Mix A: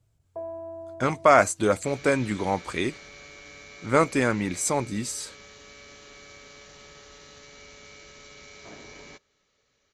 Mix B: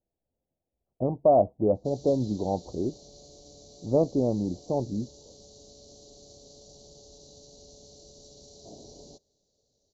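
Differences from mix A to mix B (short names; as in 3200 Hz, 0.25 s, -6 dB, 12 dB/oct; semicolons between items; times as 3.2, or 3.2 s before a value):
speech: add brick-wall FIR low-pass 1800 Hz; first sound: muted; master: add elliptic band-stop 710–4300 Hz, stop band 70 dB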